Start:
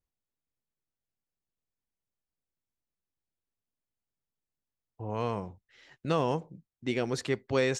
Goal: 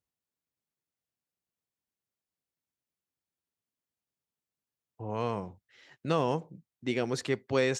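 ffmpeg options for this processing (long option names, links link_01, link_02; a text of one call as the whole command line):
ffmpeg -i in.wav -af "highpass=89" out.wav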